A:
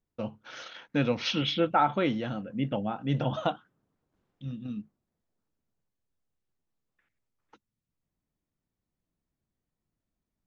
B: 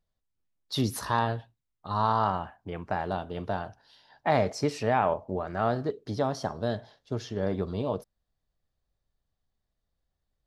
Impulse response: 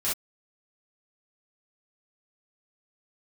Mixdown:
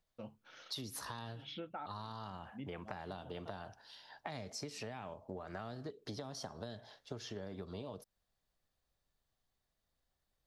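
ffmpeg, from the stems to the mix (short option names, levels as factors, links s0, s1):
-filter_complex "[0:a]volume=0.211[s0];[1:a]lowshelf=f=370:g=-9,acrossover=split=280|3000[s1][s2][s3];[s2]acompressor=threshold=0.0126:ratio=6[s4];[s1][s4][s3]amix=inputs=3:normalize=0,volume=1.33,asplit=2[s5][s6];[s6]apad=whole_len=461685[s7];[s0][s7]sidechaincompress=threshold=0.00355:ratio=8:attack=16:release=165[s8];[s8][s5]amix=inputs=2:normalize=0,acompressor=threshold=0.00891:ratio=10"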